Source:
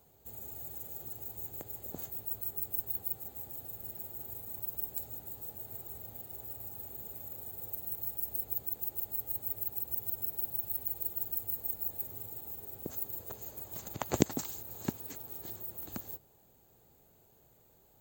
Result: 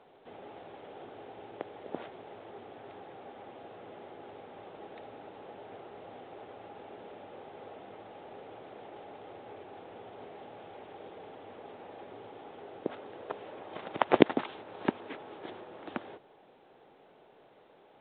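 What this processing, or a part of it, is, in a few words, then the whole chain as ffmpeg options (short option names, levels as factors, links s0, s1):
telephone: -af "highpass=340,lowpass=3100,volume=3.76" -ar 8000 -c:a pcm_alaw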